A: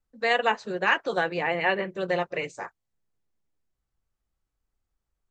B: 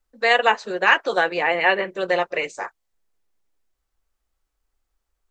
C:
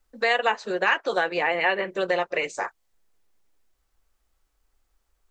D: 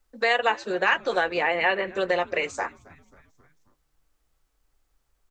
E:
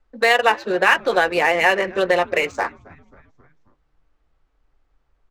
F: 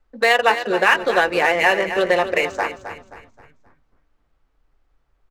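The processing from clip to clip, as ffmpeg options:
-af "equalizer=f=130:t=o:w=1.6:g=-15,volume=7dB"
-af "acompressor=threshold=-32dB:ratio=2,volume=5dB"
-filter_complex "[0:a]asplit=5[a][b][c][d][e];[b]adelay=267,afreqshift=-150,volume=-24dB[f];[c]adelay=534,afreqshift=-300,volume=-28.6dB[g];[d]adelay=801,afreqshift=-450,volume=-33.2dB[h];[e]adelay=1068,afreqshift=-600,volume=-37.7dB[i];[a][f][g][h][i]amix=inputs=5:normalize=0"
-af "adynamicsmooth=sensitivity=7:basefreq=2.9k,volume=6.5dB"
-af "aecho=1:1:264|528|792|1056:0.282|0.101|0.0365|0.0131"

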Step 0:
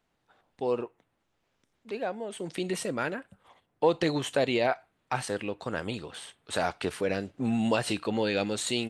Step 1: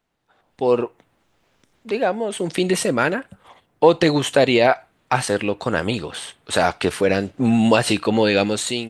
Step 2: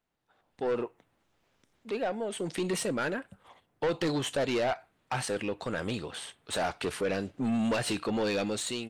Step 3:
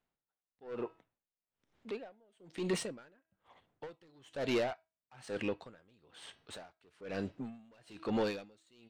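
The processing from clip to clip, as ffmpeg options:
-af "dynaudnorm=f=150:g=7:m=11.5dB,volume=1dB"
-af "asoftclip=type=tanh:threshold=-15.5dB,volume=-8.5dB"
-af "bandreject=f=323:t=h:w=4,bandreject=f=646:t=h:w=4,bandreject=f=969:t=h:w=4,bandreject=f=1.292k:t=h:w=4,bandreject=f=1.615k:t=h:w=4,bandreject=f=1.938k:t=h:w=4,bandreject=f=2.261k:t=h:w=4,bandreject=f=2.584k:t=h:w=4,bandreject=f=2.907k:t=h:w=4,bandreject=f=3.23k:t=h:w=4,bandreject=f=3.553k:t=h:w=4,bandreject=f=3.876k:t=h:w=4,bandreject=f=4.199k:t=h:w=4,bandreject=f=4.522k:t=h:w=4,bandreject=f=4.845k:t=h:w=4,bandreject=f=5.168k:t=h:w=4,bandreject=f=5.491k:t=h:w=4,bandreject=f=5.814k:t=h:w=4,bandreject=f=6.137k:t=h:w=4,adynamicsmooth=sensitivity=6:basefreq=6.7k,aeval=exprs='val(0)*pow(10,-33*(0.5-0.5*cos(2*PI*1.1*n/s))/20)':c=same,volume=-1.5dB"

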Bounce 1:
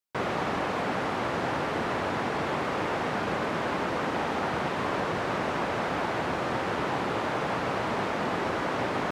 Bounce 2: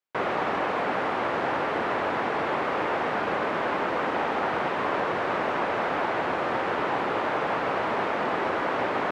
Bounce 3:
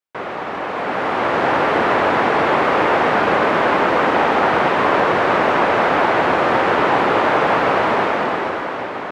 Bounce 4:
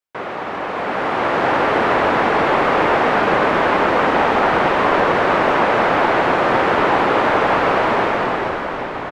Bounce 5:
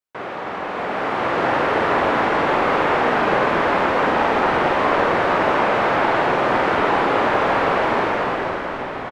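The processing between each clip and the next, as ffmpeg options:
-af "bass=f=250:g=-10,treble=f=4k:g=-12,volume=3.5dB"
-af "dynaudnorm=f=240:g=9:m=12.5dB"
-filter_complex "[0:a]asplit=8[a][b][c][d][e][f][g][h];[b]adelay=263,afreqshift=-130,volume=-16.5dB[i];[c]adelay=526,afreqshift=-260,volume=-20.4dB[j];[d]adelay=789,afreqshift=-390,volume=-24.3dB[k];[e]adelay=1052,afreqshift=-520,volume=-28.1dB[l];[f]adelay=1315,afreqshift=-650,volume=-32dB[m];[g]adelay=1578,afreqshift=-780,volume=-35.9dB[n];[h]adelay=1841,afreqshift=-910,volume=-39.8dB[o];[a][i][j][k][l][m][n][o]amix=inputs=8:normalize=0"
-filter_complex "[0:a]asplit=2[a][b];[b]adelay=48,volume=-5.5dB[c];[a][c]amix=inputs=2:normalize=0,volume=-3.5dB"

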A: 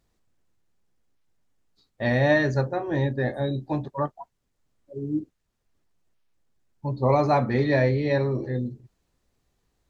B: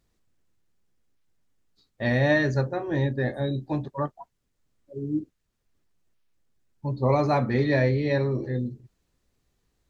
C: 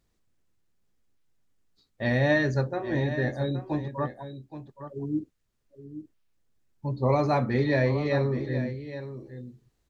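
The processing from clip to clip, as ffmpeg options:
-af "equalizer=f=790:w=1.3:g=-3.5"
-af "aecho=1:1:821:0.266,volume=-1.5dB"

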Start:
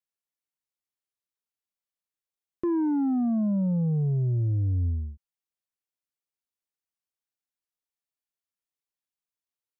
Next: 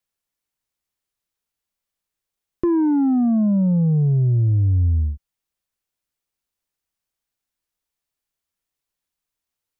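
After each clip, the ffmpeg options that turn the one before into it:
-af "lowshelf=f=84:g=11,acompressor=threshold=-23dB:ratio=6,volume=8dB"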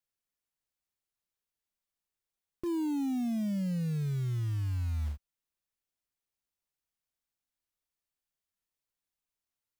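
-af "alimiter=limit=-21dB:level=0:latency=1:release=185,acrusher=bits=5:mode=log:mix=0:aa=0.000001,volume=-7.5dB"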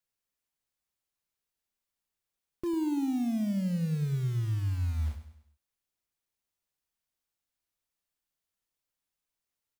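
-af "aecho=1:1:100|200|300|400:0.282|0.121|0.0521|0.0224,volume=1.5dB"

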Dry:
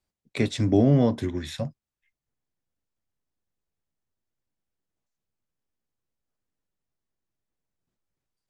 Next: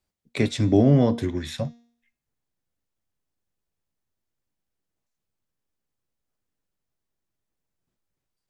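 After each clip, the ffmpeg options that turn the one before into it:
-af "bandreject=f=235.8:t=h:w=4,bandreject=f=471.6:t=h:w=4,bandreject=f=707.4:t=h:w=4,bandreject=f=943.2:t=h:w=4,bandreject=f=1.179k:t=h:w=4,bandreject=f=1.4148k:t=h:w=4,bandreject=f=1.6506k:t=h:w=4,bandreject=f=1.8864k:t=h:w=4,bandreject=f=2.1222k:t=h:w=4,bandreject=f=2.358k:t=h:w=4,bandreject=f=2.5938k:t=h:w=4,bandreject=f=2.8296k:t=h:w=4,bandreject=f=3.0654k:t=h:w=4,bandreject=f=3.3012k:t=h:w=4,bandreject=f=3.537k:t=h:w=4,bandreject=f=3.7728k:t=h:w=4,bandreject=f=4.0086k:t=h:w=4,bandreject=f=4.2444k:t=h:w=4,bandreject=f=4.4802k:t=h:w=4,bandreject=f=4.716k:t=h:w=4,bandreject=f=4.9518k:t=h:w=4,bandreject=f=5.1876k:t=h:w=4,bandreject=f=5.4234k:t=h:w=4,bandreject=f=5.6592k:t=h:w=4,bandreject=f=5.895k:t=h:w=4,bandreject=f=6.1308k:t=h:w=4,bandreject=f=6.3666k:t=h:w=4,bandreject=f=6.6024k:t=h:w=4,bandreject=f=6.8382k:t=h:w=4,bandreject=f=7.074k:t=h:w=4,bandreject=f=7.3098k:t=h:w=4,volume=2dB"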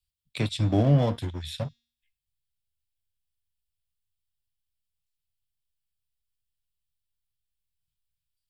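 -filter_complex "[0:a]equalizer=f=250:t=o:w=0.33:g=-10,equalizer=f=400:t=o:w=0.33:g=-10,equalizer=f=2k:t=o:w=0.33:g=-8,equalizer=f=3.15k:t=o:w=0.33:g=3,equalizer=f=6.3k:t=o:w=0.33:g=-11,acrossover=split=130|2000[a][b][c];[b]aeval=exprs='sgn(val(0))*max(abs(val(0))-0.0141,0)':c=same[d];[a][d][c]amix=inputs=3:normalize=0"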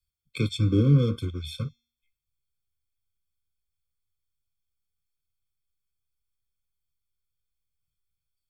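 -af "afftfilt=real='re*eq(mod(floor(b*sr/1024/520),2),0)':imag='im*eq(mod(floor(b*sr/1024/520),2),0)':win_size=1024:overlap=0.75,volume=1.5dB"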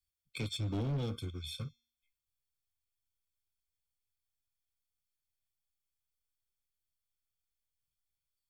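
-af "highshelf=f=2k:g=6.5,asoftclip=type=tanh:threshold=-22.5dB,volume=-8.5dB"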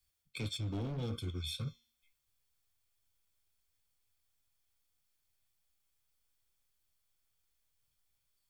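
-af "flanger=delay=7.9:depth=3.8:regen=-72:speed=1.8:shape=sinusoidal,areverse,acompressor=threshold=-50dB:ratio=5,areverse,volume=13dB"

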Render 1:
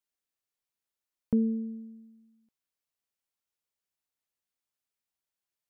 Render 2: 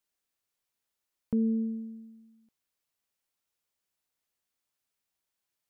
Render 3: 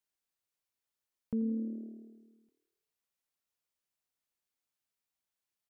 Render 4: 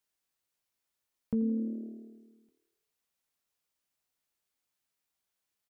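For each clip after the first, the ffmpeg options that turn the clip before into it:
-af "alimiter=level_in=2dB:limit=-24dB:level=0:latency=1:release=284,volume=-2dB,volume=4.5dB"
-filter_complex "[0:a]asplit=7[a][b][c][d][e][f][g];[b]adelay=84,afreqshift=38,volume=-17dB[h];[c]adelay=168,afreqshift=76,volume=-21.2dB[i];[d]adelay=252,afreqshift=114,volume=-25.3dB[j];[e]adelay=336,afreqshift=152,volume=-29.5dB[k];[f]adelay=420,afreqshift=190,volume=-33.6dB[l];[g]adelay=504,afreqshift=228,volume=-37.8dB[m];[a][h][i][j][k][l][m]amix=inputs=7:normalize=0,volume=-5.5dB"
-filter_complex "[0:a]asplit=2[a][b];[b]adelay=15,volume=-12dB[c];[a][c]amix=inputs=2:normalize=0,volume=4dB"

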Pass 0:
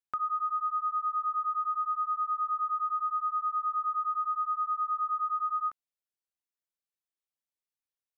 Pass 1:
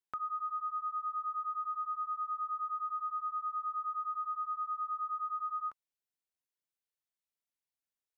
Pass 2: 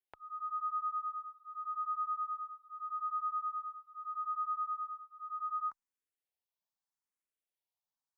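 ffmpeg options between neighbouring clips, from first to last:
-af "bandreject=f=1.2k:w=12,volume=-2.5dB"
-filter_complex "[0:a]acontrast=47,equalizer=f=890:t=o:w=0.87:g=7.5,asplit=2[a][b];[b]afreqshift=0.81[c];[a][c]amix=inputs=2:normalize=1,volume=-8dB"

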